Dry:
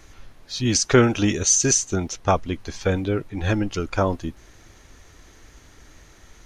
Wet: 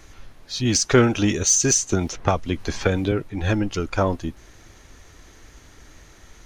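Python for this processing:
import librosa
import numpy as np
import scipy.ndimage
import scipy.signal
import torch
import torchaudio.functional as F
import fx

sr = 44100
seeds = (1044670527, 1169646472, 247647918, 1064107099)

p1 = 10.0 ** (-21.0 / 20.0) * np.tanh(x / 10.0 ** (-21.0 / 20.0))
p2 = x + (p1 * librosa.db_to_amplitude(-10.0))
p3 = fx.band_squash(p2, sr, depth_pct=100, at=(1.89, 3.12))
y = p3 * librosa.db_to_amplitude(-1.0)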